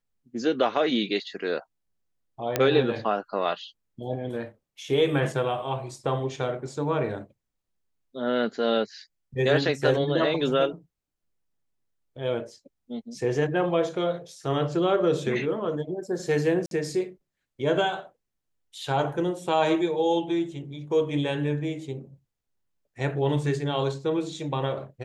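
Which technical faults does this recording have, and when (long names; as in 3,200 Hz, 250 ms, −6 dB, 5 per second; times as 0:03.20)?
0:02.56: click −8 dBFS
0:16.66–0:16.71: drop-out 52 ms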